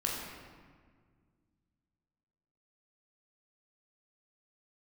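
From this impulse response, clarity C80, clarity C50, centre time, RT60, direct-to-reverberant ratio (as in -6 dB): 2.5 dB, 0.5 dB, 89 ms, 1.8 s, -3.0 dB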